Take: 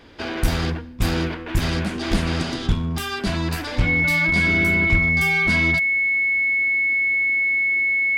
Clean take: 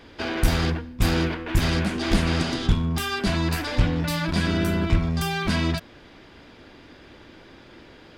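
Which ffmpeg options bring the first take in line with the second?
ffmpeg -i in.wav -af "bandreject=frequency=2200:width=30" out.wav

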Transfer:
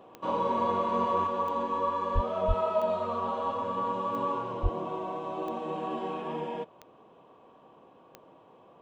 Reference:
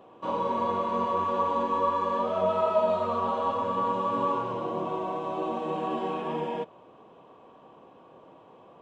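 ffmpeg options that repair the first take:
ffmpeg -i in.wav -filter_complex "[0:a]adeclick=threshold=4,asplit=3[link_01][link_02][link_03];[link_01]afade=type=out:start_time=2.14:duration=0.02[link_04];[link_02]highpass=frequency=140:width=0.5412,highpass=frequency=140:width=1.3066,afade=type=in:start_time=2.14:duration=0.02,afade=type=out:start_time=2.26:duration=0.02[link_05];[link_03]afade=type=in:start_time=2.26:duration=0.02[link_06];[link_04][link_05][link_06]amix=inputs=3:normalize=0,asplit=3[link_07][link_08][link_09];[link_07]afade=type=out:start_time=2.47:duration=0.02[link_10];[link_08]highpass=frequency=140:width=0.5412,highpass=frequency=140:width=1.3066,afade=type=in:start_time=2.47:duration=0.02,afade=type=out:start_time=2.59:duration=0.02[link_11];[link_09]afade=type=in:start_time=2.59:duration=0.02[link_12];[link_10][link_11][link_12]amix=inputs=3:normalize=0,asplit=3[link_13][link_14][link_15];[link_13]afade=type=out:start_time=4.62:duration=0.02[link_16];[link_14]highpass=frequency=140:width=0.5412,highpass=frequency=140:width=1.3066,afade=type=in:start_time=4.62:duration=0.02,afade=type=out:start_time=4.74:duration=0.02[link_17];[link_15]afade=type=in:start_time=4.74:duration=0.02[link_18];[link_16][link_17][link_18]amix=inputs=3:normalize=0,asetnsamples=nb_out_samples=441:pad=0,asendcmd='1.27 volume volume 3.5dB',volume=0dB" out.wav

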